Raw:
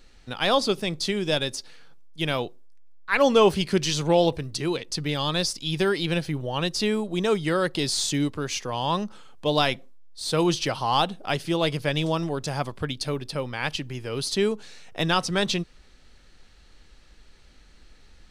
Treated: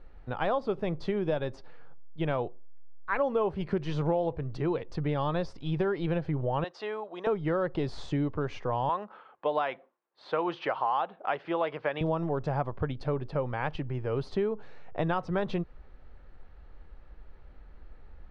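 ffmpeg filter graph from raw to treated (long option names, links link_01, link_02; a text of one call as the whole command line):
ffmpeg -i in.wav -filter_complex "[0:a]asettb=1/sr,asplit=3[link_01][link_02][link_03];[link_01]atrim=end=6.644[link_04];[link_02]atrim=start=6.64:end=7.27,asetpts=PTS-STARTPTS,afade=type=in:duration=0.004:curve=qsin,afade=type=out:start_time=0.626:duration=0.004:curve=qsin,highpass=720,lowpass=7400,bandreject=frequency=2300:width=23[link_05];[link_03]atrim=start=7.266[link_06];[link_04][link_05]acrossfade=duration=0.004:curve1=hsin:curve2=qsin[link_07];[link_07][link_06]acrossfade=duration=0.004:curve1=qsin:curve2=hsin,asettb=1/sr,asplit=3[link_08][link_09][link_10];[link_08]atrim=end=8.894[link_11];[link_09]atrim=start=8.89:end=12.01,asetpts=PTS-STARTPTS,afade=type=in:duration=0.004:curve=qsin,afade=type=out:start_time=3.116:duration=0.004:curve=qsin,highpass=250,lowpass=2900,tiltshelf=frequency=660:gain=-7.5[link_12];[link_10]atrim=start=12.006[link_13];[link_11][link_12]acrossfade=duration=0.004:curve1=hsin:curve2=qsin[link_14];[link_14][link_13]acrossfade=duration=0.004:curve1=qsin:curve2=hsin,lowpass=1000,equalizer=frequency=240:width=0.85:gain=-7.5,acompressor=threshold=-30dB:ratio=6,volume=5dB" out.wav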